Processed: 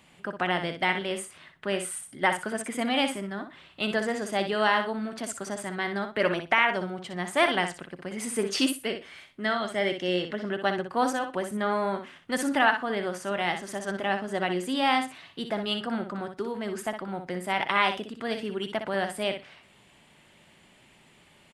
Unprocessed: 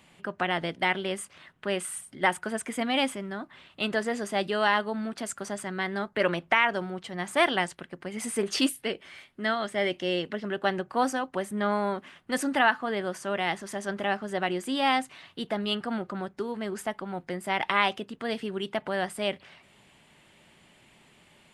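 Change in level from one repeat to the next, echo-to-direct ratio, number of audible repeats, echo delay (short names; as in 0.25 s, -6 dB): -16.0 dB, -8.0 dB, 2, 61 ms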